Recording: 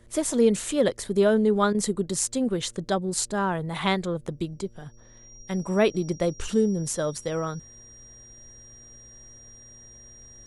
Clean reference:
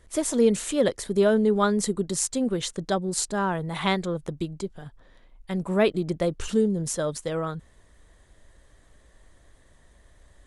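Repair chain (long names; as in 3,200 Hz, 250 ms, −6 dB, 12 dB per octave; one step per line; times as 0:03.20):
hum removal 116 Hz, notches 5
notch filter 5,700 Hz, Q 30
repair the gap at 0:01.73, 15 ms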